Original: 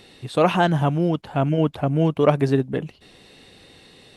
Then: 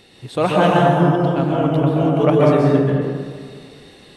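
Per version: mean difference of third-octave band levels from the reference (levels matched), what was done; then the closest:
6.5 dB: dense smooth reverb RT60 1.9 s, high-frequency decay 0.45×, pre-delay 115 ms, DRR −4 dB
level −1 dB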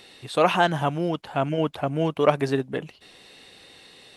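3.5 dB: low-shelf EQ 360 Hz −11 dB
level +1.5 dB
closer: second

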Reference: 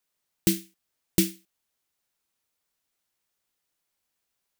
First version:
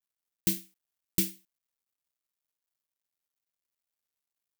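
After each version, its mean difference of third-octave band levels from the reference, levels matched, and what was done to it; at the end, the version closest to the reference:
2.0 dB: parametric band 530 Hz −11 dB 1.2 octaves
bit-depth reduction 12 bits, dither none
high-shelf EQ 11,000 Hz +6.5 dB
level −5.5 dB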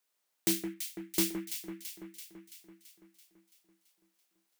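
8.0 dB: high-pass filter 290 Hz 12 dB per octave
hard clipping −23 dBFS, distortion −7 dB
on a send: delay that swaps between a low-pass and a high-pass 167 ms, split 2,000 Hz, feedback 77%, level −6 dB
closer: first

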